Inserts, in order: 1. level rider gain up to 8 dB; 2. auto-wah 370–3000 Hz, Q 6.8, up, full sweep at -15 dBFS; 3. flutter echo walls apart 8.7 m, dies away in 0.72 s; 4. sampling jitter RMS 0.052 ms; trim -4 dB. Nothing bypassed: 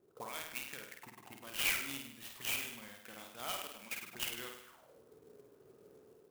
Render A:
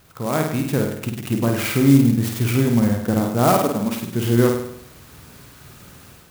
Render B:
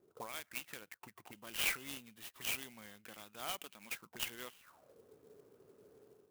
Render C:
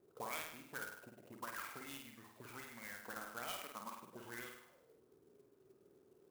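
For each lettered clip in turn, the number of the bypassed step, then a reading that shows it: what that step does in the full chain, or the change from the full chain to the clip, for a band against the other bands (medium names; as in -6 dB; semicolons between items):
2, 125 Hz band +23.5 dB; 3, loudness change -2.0 LU; 1, momentary loudness spread change -5 LU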